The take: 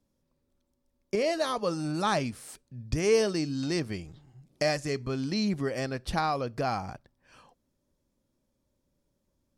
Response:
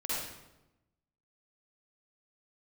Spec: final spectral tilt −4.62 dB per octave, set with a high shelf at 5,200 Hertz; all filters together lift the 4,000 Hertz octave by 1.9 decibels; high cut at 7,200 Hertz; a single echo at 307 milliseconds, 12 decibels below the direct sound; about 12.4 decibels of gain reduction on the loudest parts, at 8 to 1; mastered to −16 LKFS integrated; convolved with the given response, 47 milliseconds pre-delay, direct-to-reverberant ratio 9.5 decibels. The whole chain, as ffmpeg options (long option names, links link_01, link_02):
-filter_complex "[0:a]lowpass=7200,equalizer=frequency=4000:width_type=o:gain=6,highshelf=frequency=5200:gain=-7,acompressor=threshold=-32dB:ratio=8,aecho=1:1:307:0.251,asplit=2[link_01][link_02];[1:a]atrim=start_sample=2205,adelay=47[link_03];[link_02][link_03]afir=irnorm=-1:irlink=0,volume=-14.5dB[link_04];[link_01][link_04]amix=inputs=2:normalize=0,volume=20.5dB"